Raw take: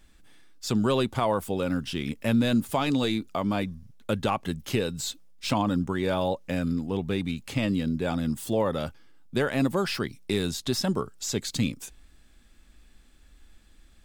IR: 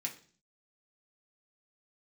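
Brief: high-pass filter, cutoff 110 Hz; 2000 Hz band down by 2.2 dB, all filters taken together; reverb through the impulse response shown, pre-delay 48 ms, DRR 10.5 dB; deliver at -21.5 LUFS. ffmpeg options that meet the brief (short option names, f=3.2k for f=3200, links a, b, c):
-filter_complex "[0:a]highpass=110,equalizer=f=2k:t=o:g=-3,asplit=2[a][b];[1:a]atrim=start_sample=2205,adelay=48[c];[b][c]afir=irnorm=-1:irlink=0,volume=-11dB[d];[a][d]amix=inputs=2:normalize=0,volume=6.5dB"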